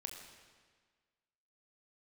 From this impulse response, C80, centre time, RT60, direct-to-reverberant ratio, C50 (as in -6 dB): 5.5 dB, 48 ms, 1.6 s, 2.5 dB, 4.5 dB